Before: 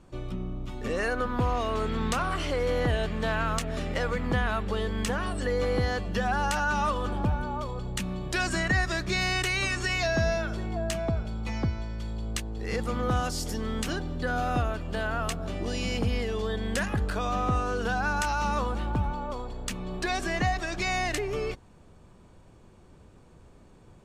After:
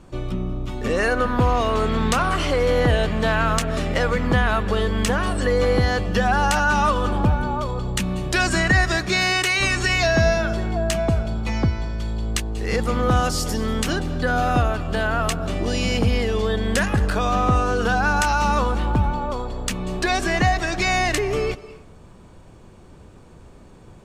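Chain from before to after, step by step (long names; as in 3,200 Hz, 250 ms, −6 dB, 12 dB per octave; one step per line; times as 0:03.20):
0:08.97–0:09.59: high-pass filter 140 Hz → 400 Hz 6 dB per octave
convolution reverb RT60 0.55 s, pre-delay 185 ms, DRR 16 dB
level +8 dB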